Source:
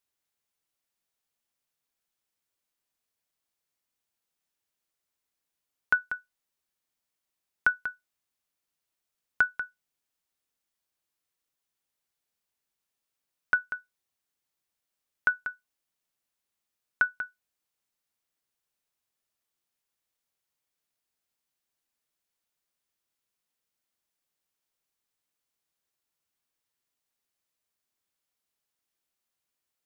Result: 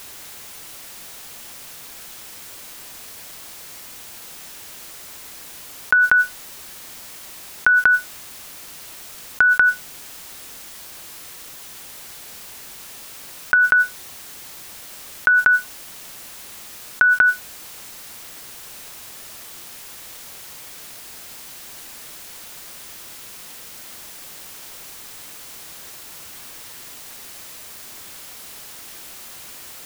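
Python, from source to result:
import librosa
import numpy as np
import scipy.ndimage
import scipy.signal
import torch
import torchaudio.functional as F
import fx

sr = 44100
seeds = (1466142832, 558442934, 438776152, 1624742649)

y = fx.env_flatten(x, sr, amount_pct=100)
y = y * 10.0 ** (6.5 / 20.0)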